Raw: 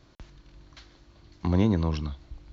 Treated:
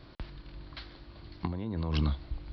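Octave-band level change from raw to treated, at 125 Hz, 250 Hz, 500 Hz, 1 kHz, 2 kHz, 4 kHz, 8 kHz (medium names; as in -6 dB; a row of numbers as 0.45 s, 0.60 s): -5.0 dB, -9.0 dB, -10.0 dB, -5.0 dB, -2.5 dB, +1.0 dB, no reading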